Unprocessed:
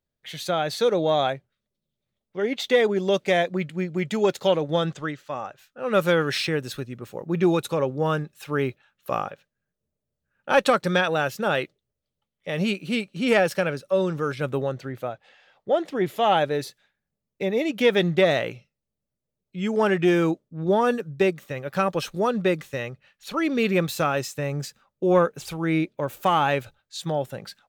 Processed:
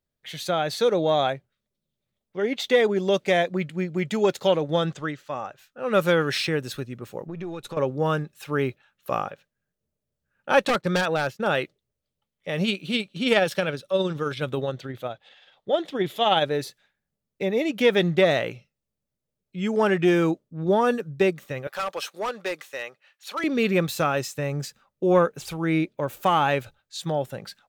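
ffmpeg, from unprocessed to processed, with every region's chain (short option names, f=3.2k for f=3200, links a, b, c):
-filter_complex "[0:a]asettb=1/sr,asplit=3[a][b][c];[a]atrim=end=7.274[d];[b]atrim=start=7.27:end=7.77,asetpts=PTS-STARTPTS,afade=t=in:d=0.004:c=qsin,afade=t=out:st=0.496:d=0.004:c=qsin,aeval=exprs='if(lt(val(0),0),0.708*val(0),val(0))':c=same,highshelf=f=7.5k:g=-8.5,acompressor=threshold=-32dB:ratio=4:attack=3.2:release=140:knee=1:detection=peak[e];[c]atrim=start=7.766[f];[d][e]acrossfade=d=0.004:c1=hsin:c2=qsin[g];[g][f]acrossfade=d=0.004:c1=qsin:c2=hsin,asettb=1/sr,asplit=3[h][i][j];[h]atrim=end=10.654[k];[i]atrim=start=10.65:end=11.47,asetpts=PTS-STARTPTS,afade=t=in:d=0.004:c=qsin,afade=t=out:st=0.816:d=0.004:c=qsin,agate=range=-33dB:threshold=-31dB:ratio=3:release=100:detection=peak,highshelf=f=5.6k:g=-8,aeval=exprs='0.168*(abs(mod(val(0)/0.168+3,4)-2)-1)':c=same[l];[j]atrim=start=11.466[m];[k][l]acrossfade=d=0.004:c1=hsin:c2=qsin[n];[n][m]acrossfade=d=0.004:c1=qsin:c2=hsin,asettb=1/sr,asplit=3[o][p][q];[o]atrim=end=12.644[r];[p]atrim=start=12.64:end=16.45,asetpts=PTS-STARTPTS,afade=t=in:d=0.004:c=qsin,afade=t=out:st=3.806:d=0.004:c=qsin,equalizer=f=3.5k:t=o:w=0.46:g=10.5,tremolo=f=19:d=0.34[s];[q]atrim=start=16.446[t];[r][s]acrossfade=d=0.004:c1=hsin:c2=qsin[u];[u][t]acrossfade=d=0.004:c1=qsin:c2=hsin,asettb=1/sr,asplit=3[v][w][x];[v]atrim=end=21.674[y];[w]atrim=start=21.67:end=23.44,asetpts=PTS-STARTPTS,afade=t=in:d=0.004:c=qsin,afade=t=out:st=1.766:d=0.004:c=qsin,highpass=610,volume=23.5dB,asoftclip=hard,volume=-23.5dB[z];[x]atrim=start=23.436[aa];[y][z]acrossfade=d=0.004:c1=hsin:c2=qsin[ab];[ab][aa]acrossfade=d=0.004:c1=qsin:c2=hsin"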